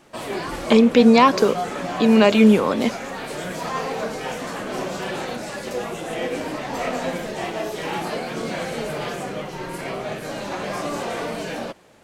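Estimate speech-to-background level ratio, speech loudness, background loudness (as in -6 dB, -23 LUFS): 12.5 dB, -16.0 LUFS, -28.5 LUFS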